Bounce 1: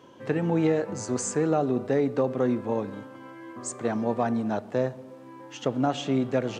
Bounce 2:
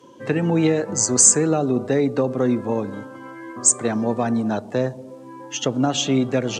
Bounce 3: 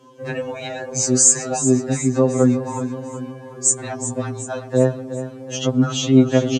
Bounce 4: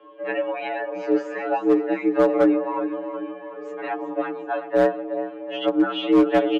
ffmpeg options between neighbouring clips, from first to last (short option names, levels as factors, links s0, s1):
-filter_complex "[0:a]afftdn=nr=12:nf=-47,equalizer=f=8300:t=o:w=2.5:g=14.5,acrossover=split=420|3000[s0][s1][s2];[s1]acompressor=threshold=0.0126:ratio=1.5[s3];[s0][s3][s2]amix=inputs=3:normalize=0,volume=2"
-filter_complex "[0:a]asplit=2[s0][s1];[s1]aecho=0:1:372|744|1116|1488|1860:0.266|0.136|0.0692|0.0353|0.018[s2];[s0][s2]amix=inputs=2:normalize=0,afftfilt=real='re*2.45*eq(mod(b,6),0)':imag='im*2.45*eq(mod(b,6),0)':win_size=2048:overlap=0.75,volume=1.19"
-filter_complex "[0:a]asplit=2[s0][s1];[s1]asoftclip=type=tanh:threshold=0.126,volume=0.251[s2];[s0][s2]amix=inputs=2:normalize=0,highpass=f=250:t=q:w=0.5412,highpass=f=250:t=q:w=1.307,lowpass=f=2900:t=q:w=0.5176,lowpass=f=2900:t=q:w=0.7071,lowpass=f=2900:t=q:w=1.932,afreqshift=54,asoftclip=type=hard:threshold=0.299"